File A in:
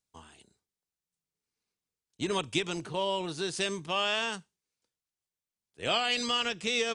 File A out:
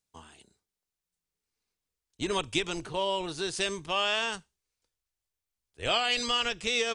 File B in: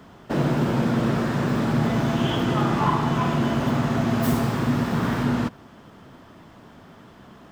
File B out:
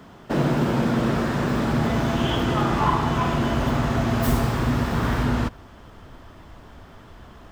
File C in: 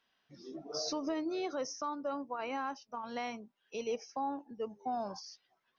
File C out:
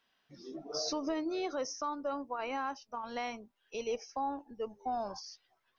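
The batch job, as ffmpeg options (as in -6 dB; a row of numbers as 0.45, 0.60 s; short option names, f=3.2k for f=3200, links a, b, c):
-af "asubboost=boost=9.5:cutoff=57,volume=1.5dB"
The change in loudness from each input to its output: +1.0, 0.0, +1.0 LU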